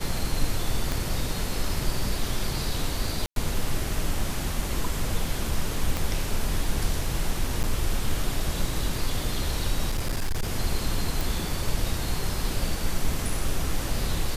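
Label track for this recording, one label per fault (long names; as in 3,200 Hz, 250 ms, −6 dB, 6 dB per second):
0.920000	0.920000	click
3.260000	3.360000	drop-out 102 ms
5.970000	5.970000	click
7.630000	7.640000	drop-out 8.6 ms
9.890000	10.490000	clipping −22 dBFS
11.210000	11.210000	click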